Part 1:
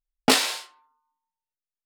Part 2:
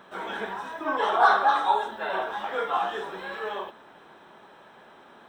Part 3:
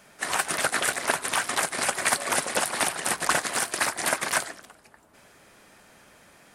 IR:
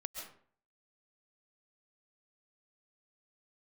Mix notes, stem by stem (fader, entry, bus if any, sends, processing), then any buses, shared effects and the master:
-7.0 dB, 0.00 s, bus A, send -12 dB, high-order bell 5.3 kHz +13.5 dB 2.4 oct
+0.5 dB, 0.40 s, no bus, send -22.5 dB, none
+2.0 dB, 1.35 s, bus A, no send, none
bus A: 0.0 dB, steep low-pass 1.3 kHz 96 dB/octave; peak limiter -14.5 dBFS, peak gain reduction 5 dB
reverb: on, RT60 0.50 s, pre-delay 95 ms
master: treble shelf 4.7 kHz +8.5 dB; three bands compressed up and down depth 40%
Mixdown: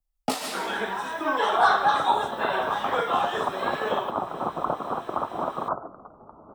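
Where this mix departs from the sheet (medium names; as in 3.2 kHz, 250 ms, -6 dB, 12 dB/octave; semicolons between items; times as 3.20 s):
stem 1: missing high-order bell 5.3 kHz +13.5 dB 2.4 oct; reverb return +7.0 dB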